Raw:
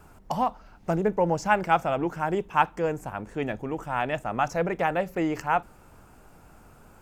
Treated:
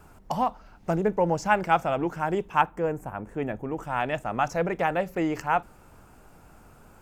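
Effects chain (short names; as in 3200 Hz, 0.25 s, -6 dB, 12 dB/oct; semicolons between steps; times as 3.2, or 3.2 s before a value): 2.61–3.78 bell 4600 Hz -12 dB 1.6 oct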